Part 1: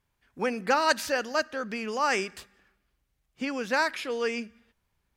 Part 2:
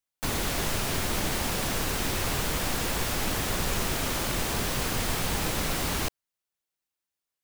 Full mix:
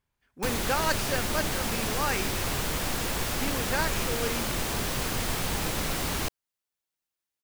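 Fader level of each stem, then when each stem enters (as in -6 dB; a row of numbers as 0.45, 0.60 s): -4.5, -1.0 dB; 0.00, 0.20 s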